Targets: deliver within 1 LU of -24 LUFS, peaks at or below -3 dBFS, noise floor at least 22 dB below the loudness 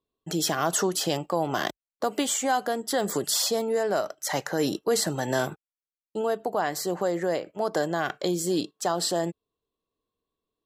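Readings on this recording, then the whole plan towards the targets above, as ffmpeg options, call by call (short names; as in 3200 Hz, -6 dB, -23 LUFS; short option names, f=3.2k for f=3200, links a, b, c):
loudness -27.0 LUFS; peak -10.5 dBFS; loudness target -24.0 LUFS
-> -af "volume=3dB"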